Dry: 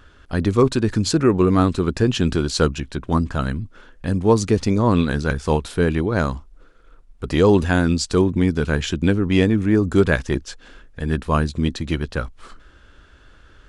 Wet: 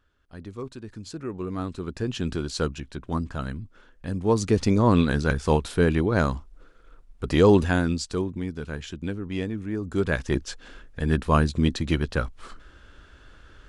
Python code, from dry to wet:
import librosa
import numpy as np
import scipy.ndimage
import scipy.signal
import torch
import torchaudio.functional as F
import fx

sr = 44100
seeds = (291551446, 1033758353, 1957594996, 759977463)

y = fx.gain(x, sr, db=fx.line((0.93, -20.0), (2.3, -8.5), (4.13, -8.5), (4.64, -2.0), (7.53, -2.0), (8.42, -13.0), (9.79, -13.0), (10.43, -1.0)))